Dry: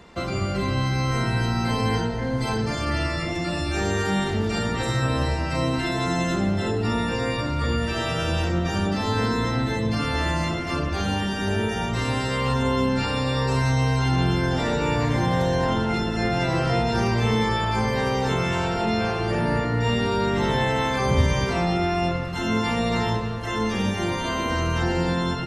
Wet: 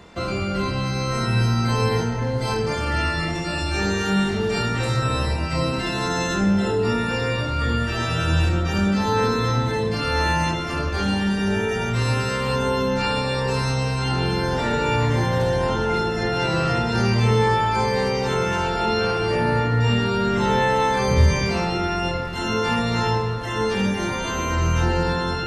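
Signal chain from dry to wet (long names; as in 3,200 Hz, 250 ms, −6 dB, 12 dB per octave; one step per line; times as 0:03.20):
reversed playback
upward compression, threshold −30 dBFS
reversed playback
flutter between parallel walls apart 4.3 metres, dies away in 0.36 s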